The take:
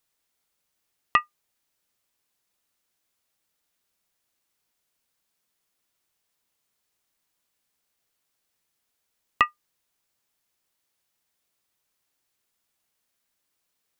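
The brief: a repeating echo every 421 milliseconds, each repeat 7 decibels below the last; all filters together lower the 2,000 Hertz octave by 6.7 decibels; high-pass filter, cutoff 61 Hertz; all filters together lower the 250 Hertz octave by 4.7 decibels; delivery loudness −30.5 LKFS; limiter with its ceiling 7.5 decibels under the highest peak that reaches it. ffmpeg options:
ffmpeg -i in.wav -af "highpass=61,equalizer=frequency=250:width_type=o:gain=-6.5,equalizer=frequency=2000:width_type=o:gain=-7.5,alimiter=limit=-15.5dB:level=0:latency=1,aecho=1:1:421|842|1263|1684|2105:0.447|0.201|0.0905|0.0407|0.0183,volume=10dB" out.wav

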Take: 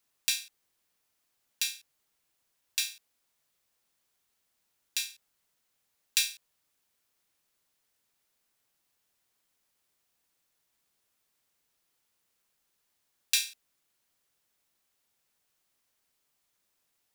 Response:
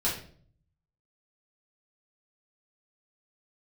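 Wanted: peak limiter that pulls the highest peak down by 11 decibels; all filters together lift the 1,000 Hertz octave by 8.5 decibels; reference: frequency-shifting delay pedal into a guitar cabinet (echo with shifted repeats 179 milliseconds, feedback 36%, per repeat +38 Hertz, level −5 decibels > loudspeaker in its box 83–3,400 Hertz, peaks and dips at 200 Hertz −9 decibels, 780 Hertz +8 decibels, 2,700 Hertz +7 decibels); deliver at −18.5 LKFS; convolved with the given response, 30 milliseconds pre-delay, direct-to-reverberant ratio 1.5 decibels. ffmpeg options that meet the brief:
-filter_complex "[0:a]equalizer=frequency=1000:width_type=o:gain=6,alimiter=limit=-14.5dB:level=0:latency=1,asplit=2[link_01][link_02];[1:a]atrim=start_sample=2205,adelay=30[link_03];[link_02][link_03]afir=irnorm=-1:irlink=0,volume=-10dB[link_04];[link_01][link_04]amix=inputs=2:normalize=0,asplit=5[link_05][link_06][link_07][link_08][link_09];[link_06]adelay=179,afreqshift=38,volume=-5dB[link_10];[link_07]adelay=358,afreqshift=76,volume=-13.9dB[link_11];[link_08]adelay=537,afreqshift=114,volume=-22.7dB[link_12];[link_09]adelay=716,afreqshift=152,volume=-31.6dB[link_13];[link_05][link_10][link_11][link_12][link_13]amix=inputs=5:normalize=0,highpass=83,equalizer=frequency=200:width_type=q:width=4:gain=-9,equalizer=frequency=780:width_type=q:width=4:gain=8,equalizer=frequency=2700:width_type=q:width=4:gain=7,lowpass=frequency=3400:width=0.5412,lowpass=frequency=3400:width=1.3066,volume=17.5dB"

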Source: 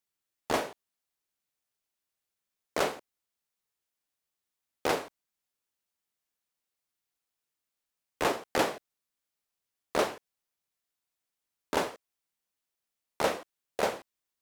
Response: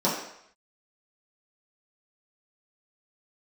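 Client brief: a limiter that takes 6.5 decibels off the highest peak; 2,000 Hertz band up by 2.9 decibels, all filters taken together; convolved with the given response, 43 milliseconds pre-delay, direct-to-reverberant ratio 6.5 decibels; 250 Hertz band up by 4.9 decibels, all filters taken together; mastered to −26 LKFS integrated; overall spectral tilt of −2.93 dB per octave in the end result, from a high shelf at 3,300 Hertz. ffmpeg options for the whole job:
-filter_complex "[0:a]equalizer=frequency=250:width_type=o:gain=6.5,equalizer=frequency=2000:width_type=o:gain=4.5,highshelf=frequency=3300:gain=-3,alimiter=limit=-17dB:level=0:latency=1,asplit=2[link_01][link_02];[1:a]atrim=start_sample=2205,adelay=43[link_03];[link_02][link_03]afir=irnorm=-1:irlink=0,volume=-20.5dB[link_04];[link_01][link_04]amix=inputs=2:normalize=0,volume=6dB"

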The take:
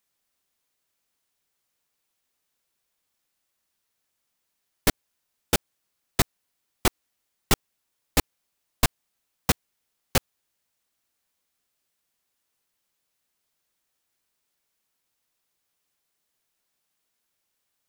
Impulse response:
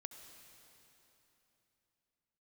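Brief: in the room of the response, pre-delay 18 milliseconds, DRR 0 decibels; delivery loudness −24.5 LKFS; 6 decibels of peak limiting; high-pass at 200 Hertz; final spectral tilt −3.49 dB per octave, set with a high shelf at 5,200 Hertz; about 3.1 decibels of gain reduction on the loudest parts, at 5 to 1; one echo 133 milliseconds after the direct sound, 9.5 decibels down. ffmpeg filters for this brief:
-filter_complex "[0:a]highpass=200,highshelf=frequency=5200:gain=-9,acompressor=threshold=-23dB:ratio=5,alimiter=limit=-16dB:level=0:latency=1,aecho=1:1:133:0.335,asplit=2[link_01][link_02];[1:a]atrim=start_sample=2205,adelay=18[link_03];[link_02][link_03]afir=irnorm=-1:irlink=0,volume=4.5dB[link_04];[link_01][link_04]amix=inputs=2:normalize=0,volume=11dB"

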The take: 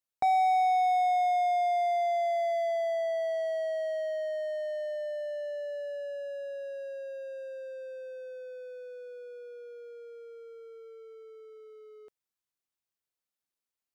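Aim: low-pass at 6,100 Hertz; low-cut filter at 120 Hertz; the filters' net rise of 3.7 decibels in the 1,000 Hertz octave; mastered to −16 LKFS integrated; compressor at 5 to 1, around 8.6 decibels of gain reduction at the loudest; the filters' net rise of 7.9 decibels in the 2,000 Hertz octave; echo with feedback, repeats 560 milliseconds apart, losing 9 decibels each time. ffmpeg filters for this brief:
ffmpeg -i in.wav -af "highpass=120,lowpass=6100,equalizer=frequency=1000:width_type=o:gain=5.5,equalizer=frequency=2000:width_type=o:gain=7.5,acompressor=threshold=-30dB:ratio=5,aecho=1:1:560|1120|1680|2240:0.355|0.124|0.0435|0.0152,volume=16.5dB" out.wav

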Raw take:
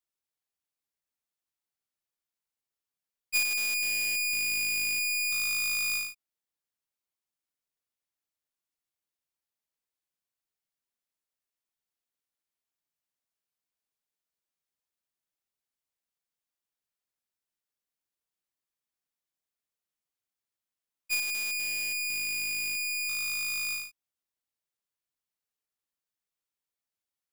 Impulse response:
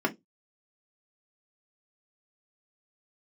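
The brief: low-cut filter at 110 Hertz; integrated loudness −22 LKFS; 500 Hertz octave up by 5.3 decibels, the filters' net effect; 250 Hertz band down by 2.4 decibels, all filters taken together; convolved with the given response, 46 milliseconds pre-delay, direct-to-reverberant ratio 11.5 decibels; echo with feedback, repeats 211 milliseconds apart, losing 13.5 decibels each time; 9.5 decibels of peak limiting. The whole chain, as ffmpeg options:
-filter_complex "[0:a]highpass=110,equalizer=frequency=250:width_type=o:gain=-5.5,equalizer=frequency=500:width_type=o:gain=8,alimiter=level_in=3.5dB:limit=-24dB:level=0:latency=1,volume=-3.5dB,aecho=1:1:211|422:0.211|0.0444,asplit=2[link_01][link_02];[1:a]atrim=start_sample=2205,adelay=46[link_03];[link_02][link_03]afir=irnorm=-1:irlink=0,volume=-22dB[link_04];[link_01][link_04]amix=inputs=2:normalize=0,volume=7dB"

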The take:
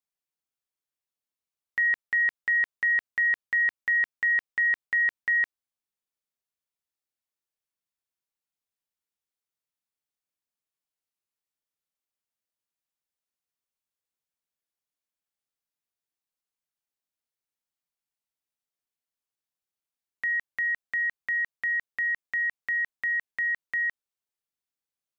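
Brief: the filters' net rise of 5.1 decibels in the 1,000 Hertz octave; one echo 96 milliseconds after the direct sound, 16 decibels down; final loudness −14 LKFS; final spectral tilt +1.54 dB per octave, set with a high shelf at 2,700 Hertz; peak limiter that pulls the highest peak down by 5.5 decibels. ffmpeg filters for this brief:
ffmpeg -i in.wav -af "equalizer=frequency=1000:width_type=o:gain=7.5,highshelf=frequency=2700:gain=-4.5,alimiter=limit=-23.5dB:level=0:latency=1,aecho=1:1:96:0.158,volume=14.5dB" out.wav

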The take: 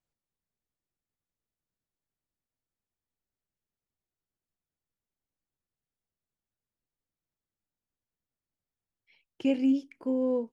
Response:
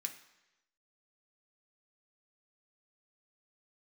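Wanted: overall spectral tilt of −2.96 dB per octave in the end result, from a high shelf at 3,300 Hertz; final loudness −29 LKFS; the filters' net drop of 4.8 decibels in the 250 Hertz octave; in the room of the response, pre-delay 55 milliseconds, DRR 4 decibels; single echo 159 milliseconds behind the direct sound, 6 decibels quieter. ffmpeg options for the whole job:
-filter_complex "[0:a]equalizer=frequency=250:width_type=o:gain=-5,highshelf=frequency=3300:gain=4.5,aecho=1:1:159:0.501,asplit=2[link_01][link_02];[1:a]atrim=start_sample=2205,adelay=55[link_03];[link_02][link_03]afir=irnorm=-1:irlink=0,volume=-2dB[link_04];[link_01][link_04]amix=inputs=2:normalize=0,volume=2dB"

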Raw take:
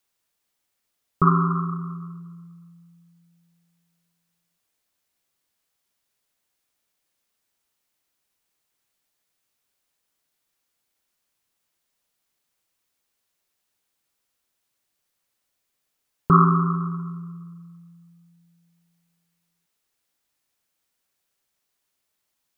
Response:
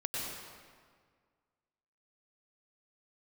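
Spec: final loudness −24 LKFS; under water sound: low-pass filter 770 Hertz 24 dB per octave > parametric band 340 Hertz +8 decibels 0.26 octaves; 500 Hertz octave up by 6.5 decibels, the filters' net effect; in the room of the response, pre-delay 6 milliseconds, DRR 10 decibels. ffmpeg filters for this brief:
-filter_complex "[0:a]equalizer=frequency=500:width_type=o:gain=5.5,asplit=2[link_01][link_02];[1:a]atrim=start_sample=2205,adelay=6[link_03];[link_02][link_03]afir=irnorm=-1:irlink=0,volume=-14dB[link_04];[link_01][link_04]amix=inputs=2:normalize=0,lowpass=frequency=770:width=0.5412,lowpass=frequency=770:width=1.3066,equalizer=frequency=340:width_type=o:width=0.26:gain=8,volume=-2dB"

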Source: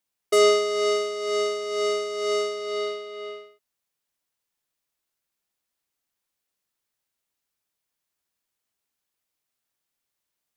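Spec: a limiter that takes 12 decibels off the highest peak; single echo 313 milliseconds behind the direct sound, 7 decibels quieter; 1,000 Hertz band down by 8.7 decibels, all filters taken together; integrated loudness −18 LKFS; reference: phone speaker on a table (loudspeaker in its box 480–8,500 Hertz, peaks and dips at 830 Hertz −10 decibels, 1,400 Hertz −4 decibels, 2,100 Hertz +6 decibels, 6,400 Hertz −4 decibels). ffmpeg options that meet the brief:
ffmpeg -i in.wav -af "equalizer=frequency=1000:width_type=o:gain=-8.5,alimiter=limit=-23.5dB:level=0:latency=1,highpass=frequency=480:width=0.5412,highpass=frequency=480:width=1.3066,equalizer=frequency=830:width_type=q:width=4:gain=-10,equalizer=frequency=1400:width_type=q:width=4:gain=-4,equalizer=frequency=2100:width_type=q:width=4:gain=6,equalizer=frequency=6400:width_type=q:width=4:gain=-4,lowpass=frequency=8500:width=0.5412,lowpass=frequency=8500:width=1.3066,aecho=1:1:313:0.447,volume=12dB" out.wav

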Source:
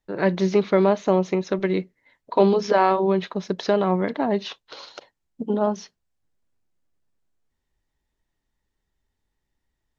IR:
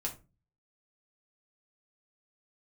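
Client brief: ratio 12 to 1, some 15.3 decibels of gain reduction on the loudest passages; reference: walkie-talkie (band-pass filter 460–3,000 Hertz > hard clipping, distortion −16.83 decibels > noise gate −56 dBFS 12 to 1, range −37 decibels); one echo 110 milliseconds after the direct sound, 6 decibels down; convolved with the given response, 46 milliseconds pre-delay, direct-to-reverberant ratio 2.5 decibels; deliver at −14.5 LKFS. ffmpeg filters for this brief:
-filter_complex "[0:a]acompressor=threshold=-29dB:ratio=12,aecho=1:1:110:0.501,asplit=2[link_01][link_02];[1:a]atrim=start_sample=2205,adelay=46[link_03];[link_02][link_03]afir=irnorm=-1:irlink=0,volume=-4dB[link_04];[link_01][link_04]amix=inputs=2:normalize=0,highpass=460,lowpass=3000,asoftclip=type=hard:threshold=-27.5dB,agate=range=-37dB:threshold=-56dB:ratio=12,volume=22.5dB"

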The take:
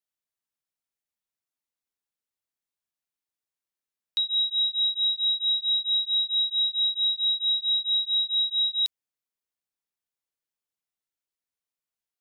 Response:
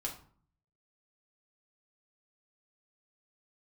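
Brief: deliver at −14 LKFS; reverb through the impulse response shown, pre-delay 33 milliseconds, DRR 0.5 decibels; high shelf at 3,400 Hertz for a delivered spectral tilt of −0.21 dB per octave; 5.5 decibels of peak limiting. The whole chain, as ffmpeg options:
-filter_complex "[0:a]highshelf=frequency=3400:gain=-6.5,alimiter=level_in=3.5dB:limit=-24dB:level=0:latency=1,volume=-3.5dB,asplit=2[link_01][link_02];[1:a]atrim=start_sample=2205,adelay=33[link_03];[link_02][link_03]afir=irnorm=-1:irlink=0,volume=-1dB[link_04];[link_01][link_04]amix=inputs=2:normalize=0,volume=19dB"

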